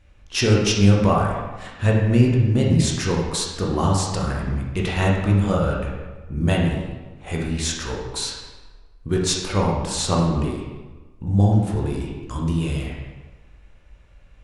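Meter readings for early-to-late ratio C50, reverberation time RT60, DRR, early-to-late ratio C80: 1.5 dB, 1.3 s, -2.5 dB, 3.5 dB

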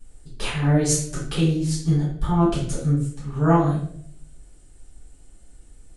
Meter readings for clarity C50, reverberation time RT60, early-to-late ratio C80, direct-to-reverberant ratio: 2.5 dB, 0.65 s, 7.0 dB, -10.0 dB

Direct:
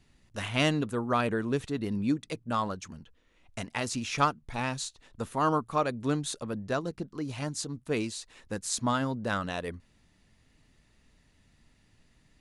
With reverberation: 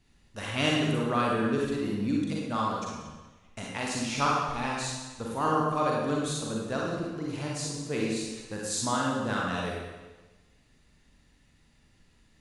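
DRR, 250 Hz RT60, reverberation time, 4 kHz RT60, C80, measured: -3.5 dB, 1.2 s, 1.2 s, 1.1 s, 2.0 dB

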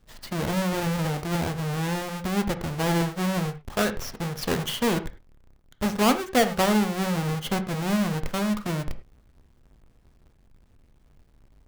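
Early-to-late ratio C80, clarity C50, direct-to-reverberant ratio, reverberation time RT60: 16.5 dB, 13.5 dB, 8.5 dB, not exponential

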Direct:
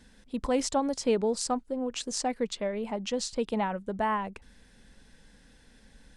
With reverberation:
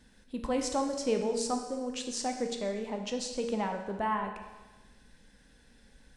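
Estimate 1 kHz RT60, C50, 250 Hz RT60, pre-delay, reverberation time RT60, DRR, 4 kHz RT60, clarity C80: 1.2 s, 6.5 dB, 1.1 s, 13 ms, 1.2 s, 3.5 dB, 1.2 s, 8.0 dB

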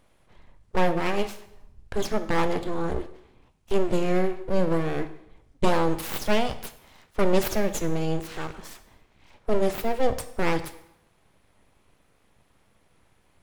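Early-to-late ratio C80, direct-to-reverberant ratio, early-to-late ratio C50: 15.5 dB, 10.0 dB, 13.0 dB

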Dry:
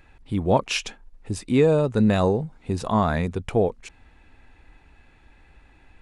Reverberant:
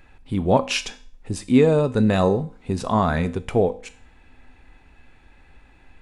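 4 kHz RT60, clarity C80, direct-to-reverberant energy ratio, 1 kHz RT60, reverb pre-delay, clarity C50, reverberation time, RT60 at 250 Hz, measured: 0.45 s, 21.5 dB, 11.5 dB, 0.45 s, 4 ms, 17.5 dB, 0.45 s, 0.45 s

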